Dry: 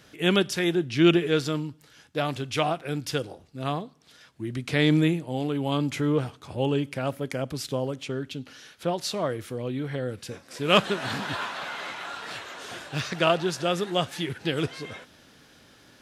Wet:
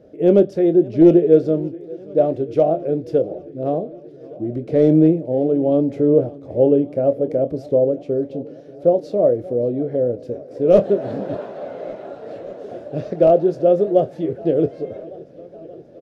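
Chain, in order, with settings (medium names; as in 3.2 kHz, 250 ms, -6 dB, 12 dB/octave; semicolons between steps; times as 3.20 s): doubling 25 ms -11 dB; wavefolder -12.5 dBFS; FFT filter 150 Hz 0 dB, 600 Hz +13 dB, 960 Hz -14 dB, 2.1 kHz -18 dB, 3.2 kHz -22 dB, 5.2 kHz -20 dB, 7.9 kHz -26 dB; modulated delay 579 ms, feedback 75%, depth 99 cents, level -21.5 dB; trim +2.5 dB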